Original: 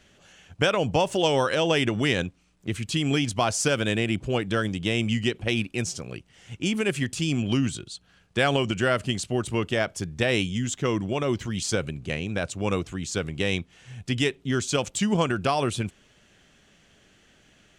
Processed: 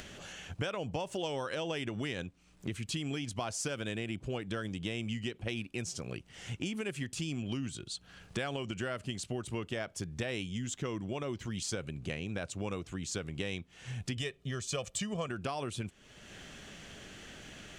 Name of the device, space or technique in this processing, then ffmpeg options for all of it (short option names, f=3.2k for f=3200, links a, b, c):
upward and downward compression: -filter_complex "[0:a]acompressor=mode=upward:threshold=-46dB:ratio=2.5,acompressor=threshold=-41dB:ratio=4,asettb=1/sr,asplit=3[a][b][c];[a]atrim=end=14.174[d];[b]atrim=start=14.17:end=15.28,asetpts=PTS-STARTPTS,afade=t=in:d=0.004:c=qsin,afade=t=out:st=1.106:d=0.004:c=qsin,aecho=1:1:1.7:0.6,atrim=end_sample=48951[e];[c]atrim=start=15.276[f];[d][e]acrossfade=d=0.004:c1=hsin:c2=qsin[g];[g][f]acrossfade=d=0.004:c1=qsin:c2=hsin,volume=4dB"